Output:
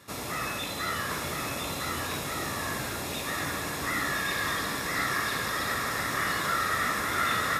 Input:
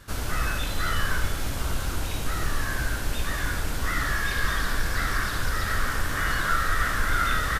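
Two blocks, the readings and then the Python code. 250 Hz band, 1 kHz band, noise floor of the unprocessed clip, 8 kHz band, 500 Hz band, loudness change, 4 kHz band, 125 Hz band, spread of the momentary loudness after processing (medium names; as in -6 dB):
-0.5 dB, -0.5 dB, -30 dBFS, 0.0 dB, +1.0 dB, -2.0 dB, 0.0 dB, -8.5 dB, 5 LU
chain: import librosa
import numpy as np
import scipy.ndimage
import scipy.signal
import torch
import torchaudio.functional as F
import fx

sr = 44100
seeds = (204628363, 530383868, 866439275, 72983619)

p1 = scipy.signal.sosfilt(scipy.signal.butter(2, 110.0, 'highpass', fs=sr, output='sos'), x)
p2 = fx.notch_comb(p1, sr, f0_hz=1500.0)
y = p2 + fx.echo_single(p2, sr, ms=1006, db=-3.5, dry=0)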